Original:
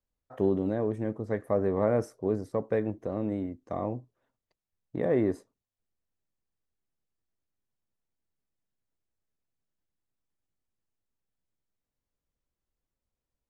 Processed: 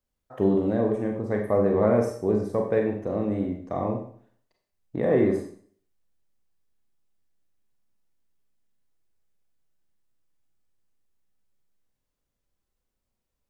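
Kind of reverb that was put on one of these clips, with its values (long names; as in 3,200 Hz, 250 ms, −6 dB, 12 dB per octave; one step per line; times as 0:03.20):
four-comb reverb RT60 0.52 s, combs from 30 ms, DRR 1.5 dB
level +3 dB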